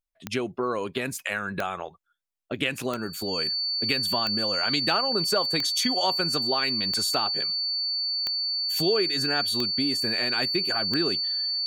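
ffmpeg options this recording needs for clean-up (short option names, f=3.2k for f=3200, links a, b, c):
-af "adeclick=t=4,bandreject=f=4.5k:w=30"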